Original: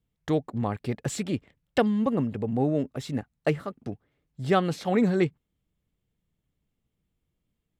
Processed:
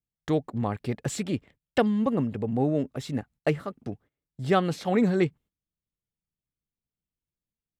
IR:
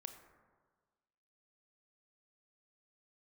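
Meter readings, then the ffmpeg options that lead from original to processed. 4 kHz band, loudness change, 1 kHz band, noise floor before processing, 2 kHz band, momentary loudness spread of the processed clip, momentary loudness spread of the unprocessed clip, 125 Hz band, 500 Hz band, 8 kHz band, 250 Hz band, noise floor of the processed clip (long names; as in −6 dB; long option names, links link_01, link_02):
0.0 dB, 0.0 dB, 0.0 dB, −81 dBFS, 0.0 dB, 10 LU, 10 LU, 0.0 dB, 0.0 dB, 0.0 dB, 0.0 dB, below −85 dBFS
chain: -af "agate=range=-16dB:threshold=-51dB:ratio=16:detection=peak"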